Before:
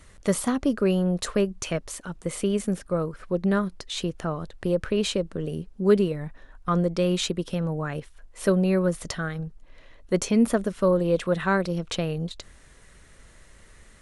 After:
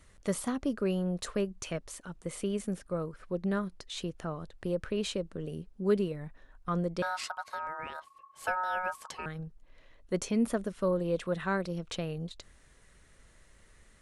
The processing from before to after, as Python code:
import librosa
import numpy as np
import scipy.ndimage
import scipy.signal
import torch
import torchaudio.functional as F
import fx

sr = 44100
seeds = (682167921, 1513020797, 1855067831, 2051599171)

y = fx.ring_mod(x, sr, carrier_hz=1100.0, at=(7.02, 9.26))
y = F.gain(torch.from_numpy(y), -8.0).numpy()